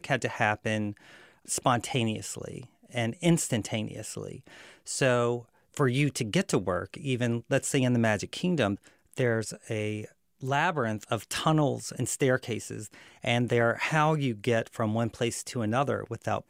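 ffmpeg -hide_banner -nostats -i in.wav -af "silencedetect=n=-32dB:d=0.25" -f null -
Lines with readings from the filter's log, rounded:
silence_start: 0.91
silence_end: 1.50 | silence_duration: 0.58
silence_start: 2.58
silence_end: 2.95 | silence_duration: 0.37
silence_start: 4.36
silence_end: 4.89 | silence_duration: 0.52
silence_start: 5.39
silence_end: 5.77 | silence_duration: 0.38
silence_start: 8.75
silence_end: 9.14 | silence_duration: 0.38
silence_start: 10.05
silence_end: 10.43 | silence_duration: 0.38
silence_start: 12.86
silence_end: 13.25 | silence_duration: 0.39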